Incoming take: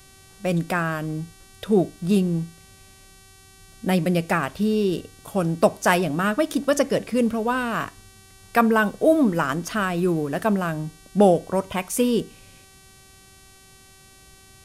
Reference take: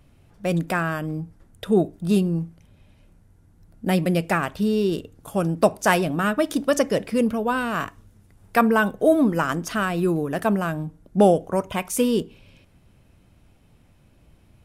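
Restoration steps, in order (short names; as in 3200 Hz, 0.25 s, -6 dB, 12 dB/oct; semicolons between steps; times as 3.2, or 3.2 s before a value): de-hum 384.4 Hz, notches 31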